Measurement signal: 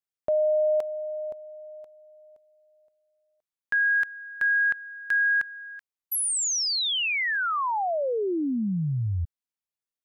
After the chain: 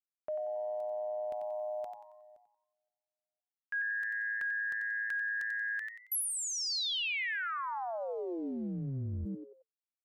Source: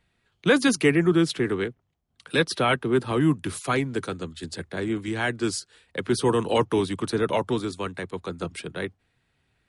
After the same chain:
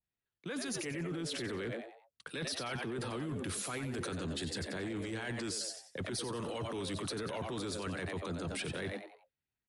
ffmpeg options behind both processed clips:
-filter_complex "[0:a]agate=range=0.0224:threshold=0.00562:ratio=3:release=64:detection=peak,areverse,acompressor=threshold=0.0224:ratio=12:attack=0.11:release=117:knee=6:detection=peak,areverse,asplit=5[s0][s1][s2][s3][s4];[s1]adelay=91,afreqshift=110,volume=0.335[s5];[s2]adelay=182,afreqshift=220,volume=0.12[s6];[s3]adelay=273,afreqshift=330,volume=0.0437[s7];[s4]adelay=364,afreqshift=440,volume=0.0157[s8];[s0][s5][s6][s7][s8]amix=inputs=5:normalize=0,alimiter=level_in=5.96:limit=0.0631:level=0:latency=1:release=23,volume=0.168,adynamicequalizer=threshold=0.002:dfrequency=1600:dqfactor=0.7:tfrequency=1600:tqfactor=0.7:attack=5:release=100:ratio=0.375:range=2:mode=boostabove:tftype=highshelf,volume=2.37"

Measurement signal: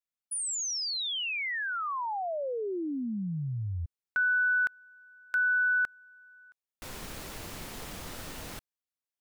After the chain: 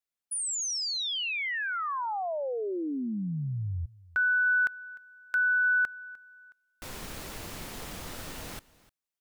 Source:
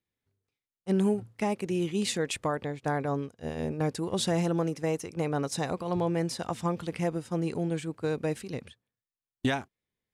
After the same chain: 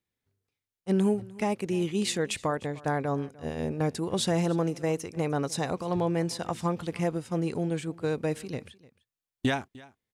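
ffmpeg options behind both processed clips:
-af "aecho=1:1:302:0.0841,volume=1.12"

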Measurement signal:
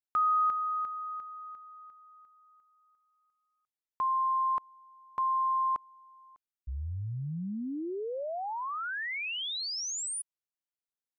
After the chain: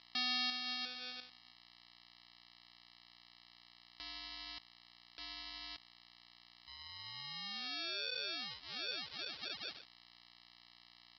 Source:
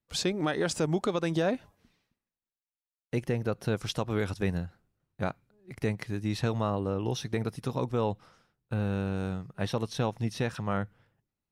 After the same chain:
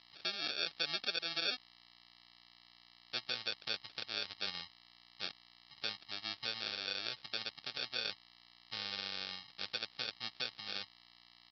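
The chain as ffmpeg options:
-filter_complex "[0:a]afwtdn=0.02,agate=range=0.0224:threshold=0.00112:ratio=3:release=50:detection=rms,asplit=2[s0][s1];[s1]alimiter=level_in=1.58:limit=0.0631:level=0:latency=1:release=384,volume=0.631,volume=0.75[s2];[s0][s2]amix=inputs=2:normalize=0,acrusher=bits=10:mix=0:aa=0.000001,aeval=exprs='val(0)+0.00794*(sin(2*PI*60*n/s)+sin(2*PI*2*60*n/s)/2+sin(2*PI*3*60*n/s)/3+sin(2*PI*4*60*n/s)/4+sin(2*PI*5*60*n/s)/5)':c=same,aresample=11025,acrusher=samples=11:mix=1:aa=0.000001,aresample=44100,bandpass=f=4200:t=q:w=1.9:csg=0,volume=1.41"

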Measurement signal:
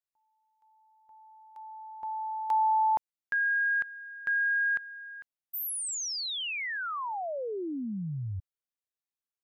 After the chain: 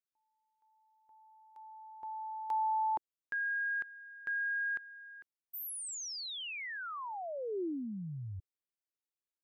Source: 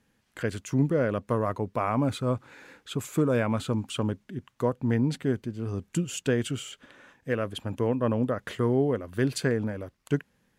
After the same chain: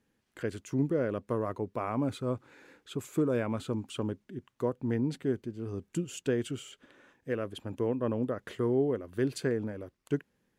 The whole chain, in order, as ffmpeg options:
-af "equalizer=f=360:w=1.6:g=6.5,volume=0.422"

